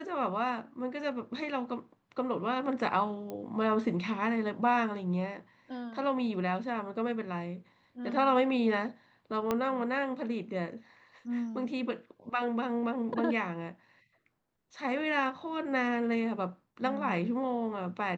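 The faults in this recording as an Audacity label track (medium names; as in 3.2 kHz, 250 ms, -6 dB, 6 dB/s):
3.300000	3.300000	pop -26 dBFS
9.510000	9.510000	pop -16 dBFS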